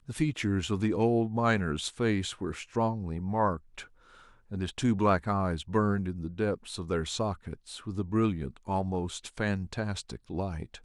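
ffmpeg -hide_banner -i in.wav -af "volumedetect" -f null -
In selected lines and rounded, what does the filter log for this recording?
mean_volume: -30.5 dB
max_volume: -11.2 dB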